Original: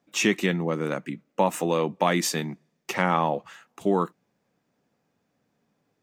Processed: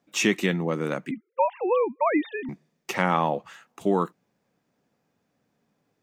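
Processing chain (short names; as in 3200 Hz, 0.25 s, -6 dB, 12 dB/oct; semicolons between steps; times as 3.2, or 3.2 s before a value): 1.11–2.49 sine-wave speech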